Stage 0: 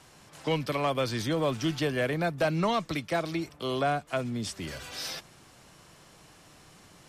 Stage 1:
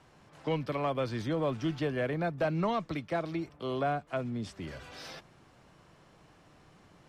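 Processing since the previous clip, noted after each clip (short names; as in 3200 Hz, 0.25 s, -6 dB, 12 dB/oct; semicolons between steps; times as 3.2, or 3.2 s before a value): LPF 1700 Hz 6 dB/oct; gain -2.5 dB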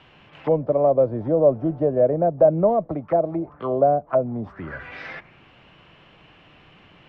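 envelope low-pass 600–3100 Hz down, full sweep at -30 dBFS; gain +6 dB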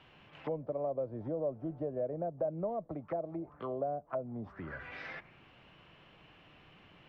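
compressor 2:1, threshold -32 dBFS, peak gain reduction 12 dB; gain -8 dB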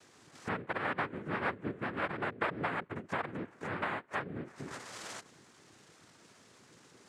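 noise vocoder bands 3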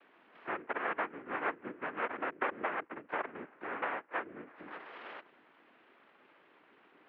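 mistuned SSB -87 Hz 390–3000 Hz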